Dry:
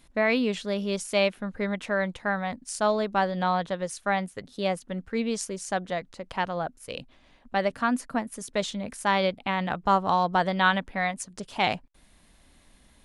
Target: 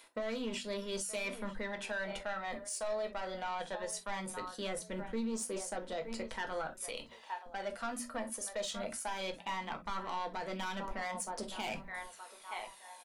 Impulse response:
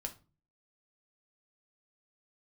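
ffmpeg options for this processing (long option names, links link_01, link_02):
-filter_complex "[0:a]asplit=2[link_01][link_02];[link_02]adelay=921,lowpass=frequency=1800:poles=1,volume=-17.5dB,asplit=2[link_03][link_04];[link_04]adelay=921,lowpass=frequency=1800:poles=1,volume=0.3,asplit=2[link_05][link_06];[link_06]adelay=921,lowpass=frequency=1800:poles=1,volume=0.3[link_07];[link_01][link_03][link_05][link_07]amix=inputs=4:normalize=0,aphaser=in_gain=1:out_gain=1:delay=1.8:decay=0.43:speed=0.18:type=triangular,acrossover=split=420|3100[link_08][link_09][link_10];[link_08]aeval=exprs='sgn(val(0))*max(abs(val(0))-0.00562,0)':channel_layout=same[link_11];[link_11][link_09][link_10]amix=inputs=3:normalize=0,highshelf=frequency=7400:gain=6.5,bandreject=frequency=60:width_type=h:width=6,bandreject=frequency=120:width_type=h:width=6,bandreject=frequency=180:width_type=h:width=6,bandreject=frequency=240:width_type=h:width=6,asoftclip=type=tanh:threshold=-21.5dB,areverse,acompressor=threshold=-35dB:ratio=10,areverse[link_12];[1:a]atrim=start_sample=2205,atrim=end_sample=3087[link_13];[link_12][link_13]afir=irnorm=-1:irlink=0,alimiter=level_in=10.5dB:limit=-24dB:level=0:latency=1:release=150,volume=-10.5dB,equalizer=frequency=110:width=2.2:gain=-14.5,volume=5dB"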